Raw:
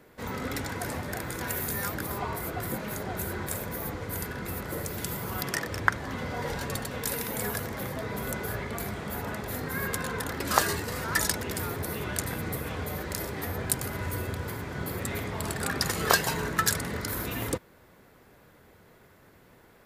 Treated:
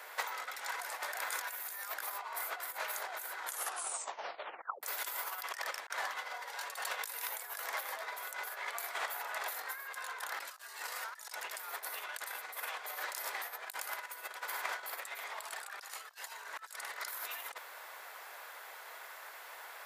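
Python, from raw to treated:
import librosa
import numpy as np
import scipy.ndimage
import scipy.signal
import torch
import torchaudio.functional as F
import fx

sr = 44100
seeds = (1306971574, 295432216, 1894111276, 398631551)

y = fx.edit(x, sr, fx.tape_stop(start_s=3.38, length_s=1.45), tone=tone)
y = fx.over_compress(y, sr, threshold_db=-39.0, ratio=-0.5)
y = scipy.signal.sosfilt(scipy.signal.butter(4, 730.0, 'highpass', fs=sr, output='sos'), y)
y = y * librosa.db_to_amplitude(4.0)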